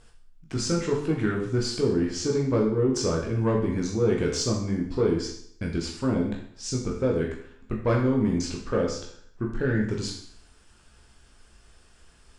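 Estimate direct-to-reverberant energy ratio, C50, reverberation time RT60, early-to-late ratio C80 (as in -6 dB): -1.5 dB, 5.0 dB, 0.60 s, 8.5 dB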